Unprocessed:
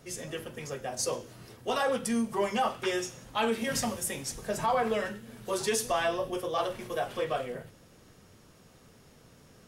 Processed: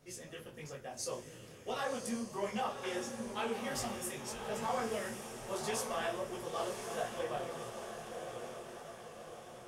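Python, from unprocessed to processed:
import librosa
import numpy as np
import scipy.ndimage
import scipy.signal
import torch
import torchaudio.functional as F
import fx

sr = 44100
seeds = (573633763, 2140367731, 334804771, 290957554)

p1 = x + fx.echo_diffused(x, sr, ms=1081, feedback_pct=57, wet_db=-6, dry=0)
p2 = fx.detune_double(p1, sr, cents=54)
y = p2 * 10.0 ** (-5.0 / 20.0)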